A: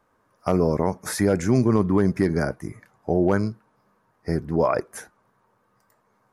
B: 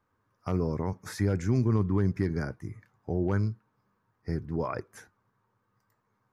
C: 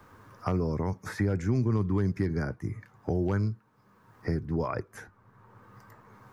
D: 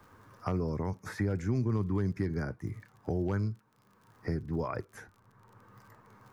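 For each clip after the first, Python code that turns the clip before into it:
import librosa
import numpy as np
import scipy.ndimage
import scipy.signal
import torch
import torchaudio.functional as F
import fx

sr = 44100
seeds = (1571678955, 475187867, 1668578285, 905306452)

y1 = fx.graphic_eq_15(x, sr, hz=(100, 630, 10000), db=(10, -7, -9))
y1 = y1 * 10.0 ** (-8.5 / 20.0)
y2 = fx.band_squash(y1, sr, depth_pct=70)
y3 = fx.dmg_crackle(y2, sr, seeds[0], per_s=39.0, level_db=-46.0)
y3 = y3 * 10.0 ** (-3.5 / 20.0)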